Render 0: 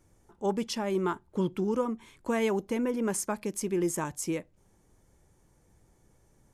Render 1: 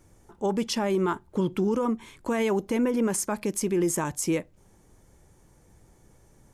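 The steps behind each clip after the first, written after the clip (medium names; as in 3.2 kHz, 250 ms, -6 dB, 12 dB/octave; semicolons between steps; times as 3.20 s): peak limiter -24 dBFS, peak gain reduction 7.5 dB; trim +6.5 dB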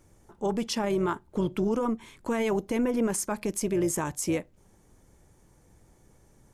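AM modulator 230 Hz, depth 25%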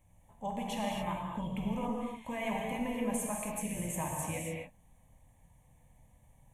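static phaser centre 1.4 kHz, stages 6; gated-style reverb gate 300 ms flat, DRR -2 dB; trim -5.5 dB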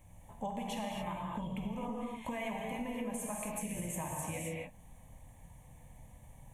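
compression 6:1, threshold -44 dBFS, peak gain reduction 14 dB; trim +7.5 dB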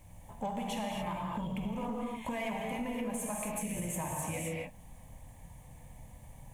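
added noise white -78 dBFS; in parallel at -6 dB: hard clipper -39 dBFS, distortion -10 dB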